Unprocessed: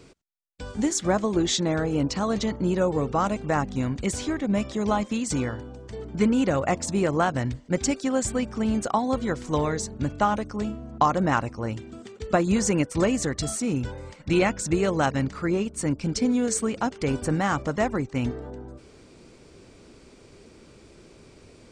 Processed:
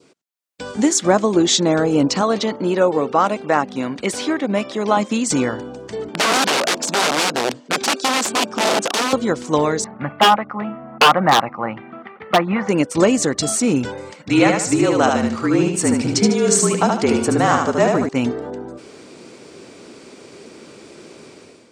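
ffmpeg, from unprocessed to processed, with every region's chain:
-filter_complex "[0:a]asettb=1/sr,asplit=3[a][b][c];[a]atrim=end=2.214[d];[b]atrim=start=2.21:end=4.97,asetpts=PTS-STARTPTS,afade=t=in:d=0.004:c=qsin,afade=t=out:st=2.756:d=0.004:c=qsin,highpass=f=310:p=1,equalizer=f=7.1k:w=2:g=-8.5[e];[c]atrim=start=4.966[f];[d][e]acrossfade=d=0.004:c1=hsin:c2=qsin[g];[g][f]acrossfade=d=0.004:c1=qsin:c2=hsin,asettb=1/sr,asplit=3[h][i][j];[h]atrim=end=6.094[k];[i]atrim=start=6.09:end=9.13,asetpts=PTS-STARTPTS,afade=t=in:d=0.004:c=qsin,afade=t=out:st=3.036:d=0.004:c=qsin,bandreject=f=2k:w=11,aeval=exprs='(mod(11.9*val(0)+1,2)-1)/11.9':c=same,highpass=210,lowpass=7.6k[l];[j]atrim=start=9.126[m];[k][l]acrossfade=d=0.004:c1=hsin:c2=qsin[n];[n][m]acrossfade=d=0.004:c1=qsin:c2=hsin,asettb=1/sr,asplit=3[o][p][q];[o]atrim=end=9.844[r];[p]atrim=start=9.84:end=12.69,asetpts=PTS-STARTPTS,afade=t=in:d=0.004:c=qsin,afade=t=out:st=2.846:d=0.004:c=qsin,highpass=130,equalizer=f=150:t=q:w=4:g=4,equalizer=f=280:t=q:w=4:g=-7,equalizer=f=420:t=q:w=4:g=-9,equalizer=f=790:t=q:w=4:g=9,equalizer=f=1.2k:t=q:w=4:g=10,equalizer=f=2k:t=q:w=4:g=9,lowpass=f=2.5k:w=0.5412,lowpass=f=2.5k:w=1.3066,aeval=exprs='0.251*(abs(mod(val(0)/0.251+3,4)-2)-1)':c=same[s];[q]atrim=start=12.686[t];[r][s]acrossfade=d=0.004:c1=hsin:c2=qsin[u];[u][t]acrossfade=d=0.004:c1=qsin:c2=hsin,asettb=1/sr,asplit=3[v][w][x];[v]atrim=end=14.294[y];[w]atrim=start=14.29:end=18.09,asetpts=PTS-STARTPTS,afade=t=in:d=0.004:c=qsin,afade=t=out:st=3.796:d=0.004:c=qsin,afreqshift=-40,aecho=1:1:75|150|225|300|375:0.668|0.241|0.0866|0.0312|0.0112,atrim=end_sample=167580[z];[x]atrim=start=18.086[aa];[y][z]acrossfade=d=0.004:c1=hsin:c2=qsin[ab];[ab][aa]acrossfade=d=0.004:c1=qsin:c2=hsin,highpass=210,adynamicequalizer=threshold=0.00631:dfrequency=1900:dqfactor=1.9:tfrequency=1900:tqfactor=1.9:attack=5:release=100:ratio=0.375:range=2.5:mode=cutabove:tftype=bell,dynaudnorm=f=170:g=5:m=11.5dB"

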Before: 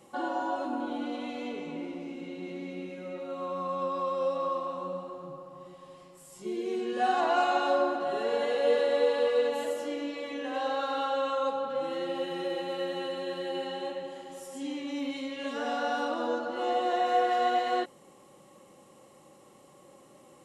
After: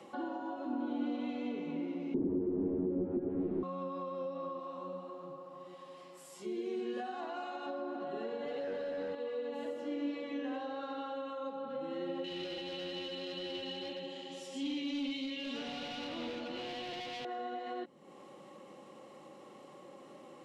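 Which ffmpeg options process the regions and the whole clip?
-filter_complex "[0:a]asettb=1/sr,asplit=3[a][b][c];[a]atrim=end=2.144[d];[b]atrim=start=2.14:end=3.63,asetpts=PTS-STARTPTS,afade=t=in:d=0.004:c=qsin,afade=t=out:st=1.486:d=0.004:c=qsin,aeval=exprs='0.0562*sin(PI/2*6.31*val(0)/0.0562)':c=same,lowpass=f=370:t=q:w=4.1[e];[c]atrim=start=3.626[f];[d][e]acrossfade=d=0.004:c1=hsin:c2=qsin[g];[g][f]acrossfade=d=0.004:c1=qsin:c2=hsin,asettb=1/sr,asplit=3[h][i][j];[h]atrim=end=4.594[k];[i]atrim=start=4.59:end=7.66,asetpts=PTS-STARTPTS,afade=t=in:d=0.004:c=qsin,afade=t=out:st=3.066:d=0.004:c=qsin,highpass=f=330:p=1,highshelf=f=6.9k:g=9.5[l];[j]atrim=start=7.656[m];[k][l]acrossfade=d=0.004:c1=hsin:c2=qsin[n];[n][m]acrossfade=d=0.004:c1=qsin:c2=hsin,asettb=1/sr,asplit=3[o][p][q];[o]atrim=end=8.454[r];[p]atrim=start=8.45:end=9.15,asetpts=PTS-STARTPTS,afade=t=in:d=0.004:c=qsin,afade=t=out:st=0.696:d=0.004:c=qsin,aecho=1:1:6.9:0.75,atrim=end_sample=30870,acontrast=45,asoftclip=type=hard:threshold=-16.5dB[s];[q]atrim=start=9.146[t];[r][s]acrossfade=d=0.004:c1=hsin:c2=qsin[u];[u][t]acrossfade=d=0.004:c1=qsin:c2=hsin,asettb=1/sr,asplit=3[v][w][x];[v]atrim=end=12.244[y];[w]atrim=start=12.24:end=17.25,asetpts=PTS-STARTPTS,afade=t=in:d=0.004:c=qsin,afade=t=out:st=5.006:d=0.004:c=qsin,lowpass=8.4k,volume=32.5dB,asoftclip=hard,volume=-32.5dB,highshelf=f=2.1k:t=q:w=1.5:g=10.5[z];[x]atrim=start=17.246[aa];[y][z]acrossfade=d=0.004:c1=hsin:c2=qsin[ab];[ab][aa]acrossfade=d=0.004:c1=qsin:c2=hsin,acrossover=split=180 5200:gain=0.158 1 0.178[ac][ad][ae];[ac][ad][ae]amix=inputs=3:normalize=0,alimiter=level_in=0.5dB:limit=-24dB:level=0:latency=1:release=335,volume=-0.5dB,acrossover=split=270[af][ag];[ag]acompressor=threshold=-60dB:ratio=2[ah];[af][ah]amix=inputs=2:normalize=0,volume=6dB"

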